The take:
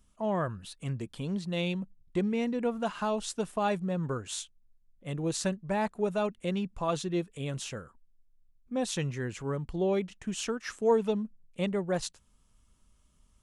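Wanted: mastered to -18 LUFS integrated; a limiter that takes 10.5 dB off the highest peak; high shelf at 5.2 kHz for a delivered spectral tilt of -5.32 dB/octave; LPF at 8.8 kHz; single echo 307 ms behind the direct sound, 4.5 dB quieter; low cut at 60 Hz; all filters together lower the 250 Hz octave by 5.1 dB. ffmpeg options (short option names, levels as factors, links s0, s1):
-af "highpass=60,lowpass=8800,equalizer=f=250:t=o:g=-7.5,highshelf=f=5200:g=-6.5,alimiter=level_in=1.33:limit=0.0631:level=0:latency=1,volume=0.75,aecho=1:1:307:0.596,volume=8.41"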